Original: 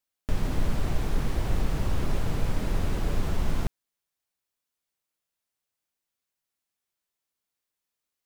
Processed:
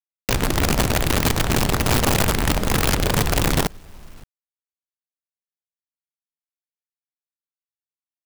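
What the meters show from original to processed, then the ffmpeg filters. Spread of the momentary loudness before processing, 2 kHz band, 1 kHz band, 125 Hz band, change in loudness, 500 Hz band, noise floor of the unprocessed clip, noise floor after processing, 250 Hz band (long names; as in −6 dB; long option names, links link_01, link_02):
3 LU, +16.5 dB, +14.5 dB, +8.0 dB, +11.0 dB, +12.5 dB, below −85 dBFS, below −85 dBFS, +10.5 dB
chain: -af "aecho=1:1:568:0.0708,aeval=exprs='(mod(10.6*val(0)+1,2)-1)/10.6':channel_layout=same,acrusher=bits=8:mix=0:aa=0.000001,volume=6.5dB"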